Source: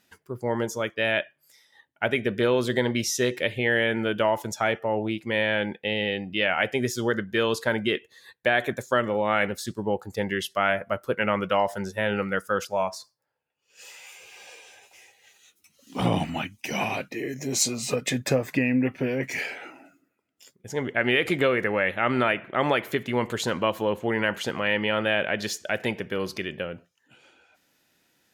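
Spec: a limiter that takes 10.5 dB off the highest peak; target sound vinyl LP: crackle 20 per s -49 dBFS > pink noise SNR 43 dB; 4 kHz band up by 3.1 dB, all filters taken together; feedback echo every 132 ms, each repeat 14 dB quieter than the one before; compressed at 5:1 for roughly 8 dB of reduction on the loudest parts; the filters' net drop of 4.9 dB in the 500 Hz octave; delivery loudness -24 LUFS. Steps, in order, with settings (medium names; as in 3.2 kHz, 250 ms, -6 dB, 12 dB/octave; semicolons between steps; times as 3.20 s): peaking EQ 500 Hz -6 dB; peaking EQ 4 kHz +4.5 dB; compression 5:1, threshold -27 dBFS; peak limiter -23.5 dBFS; feedback delay 132 ms, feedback 20%, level -14 dB; crackle 20 per s -49 dBFS; pink noise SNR 43 dB; trim +11 dB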